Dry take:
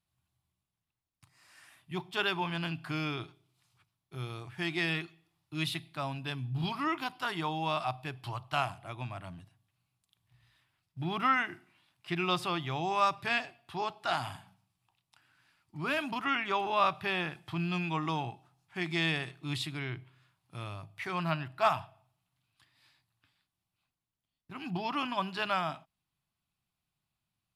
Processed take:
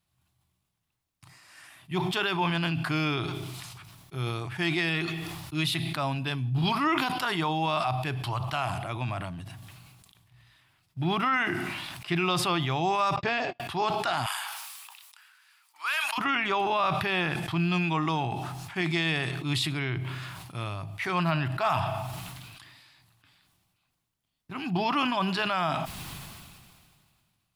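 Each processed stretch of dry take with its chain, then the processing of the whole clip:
0:13.16–0:13.60: Butterworth low-pass 7,200 Hz 48 dB per octave + parametric band 460 Hz +8.5 dB 1.6 octaves + noise gate −47 dBFS, range −55 dB
0:14.26–0:16.18: high-pass filter 1,000 Hz 24 dB per octave + high-shelf EQ 7,800 Hz +8.5 dB
whole clip: brickwall limiter −24 dBFS; level that may fall only so fast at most 28 dB per second; level +6.5 dB

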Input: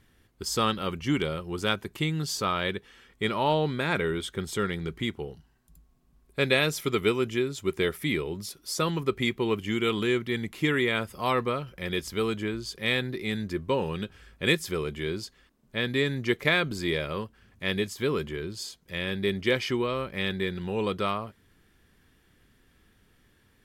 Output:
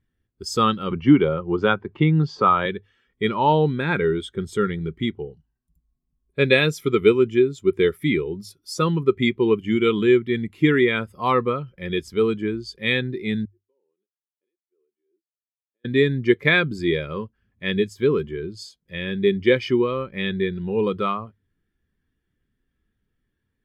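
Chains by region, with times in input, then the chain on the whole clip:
0:00.91–0:02.66: Gaussian smoothing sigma 1.8 samples + parametric band 810 Hz +6 dB 1.7 octaves + multiband upward and downward compressor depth 40%
0:13.45–0:15.85: first difference + downward compressor 5 to 1, threshold −48 dBFS + resonant band-pass 350 Hz, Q 2.5
whole clip: mains-hum notches 50/100 Hz; dynamic equaliser 620 Hz, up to −5 dB, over −45 dBFS, Q 4.8; every bin expanded away from the loudest bin 1.5 to 1; level +5 dB

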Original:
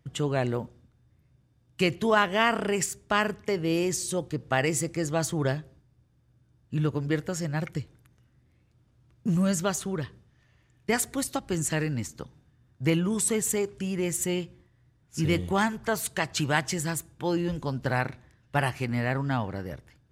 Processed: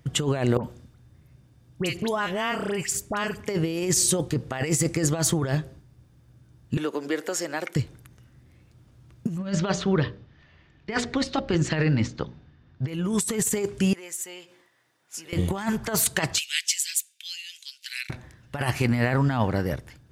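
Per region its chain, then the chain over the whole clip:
0:00.57–0:03.40: downward compressor 3 to 1, threshold −36 dBFS + all-pass dispersion highs, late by 70 ms, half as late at 1,700 Hz
0:06.77–0:07.76: high-pass filter 300 Hz 24 dB per octave + downward compressor 2 to 1, threshold −37 dBFS
0:09.38–0:12.88: low-pass filter 4,600 Hz 24 dB per octave + mains-hum notches 60/120/180/240/300/360/420/480/540/600 Hz
0:13.93–0:15.33: downward compressor 4 to 1, threshold −43 dBFS + high-pass filter 590 Hz
0:16.38–0:18.10: Butterworth high-pass 2,400 Hz + high-shelf EQ 7,400 Hz −4.5 dB
whole clip: high-shelf EQ 5,500 Hz +3 dB; compressor whose output falls as the input rises −29 dBFS, ratio −0.5; level +6.5 dB

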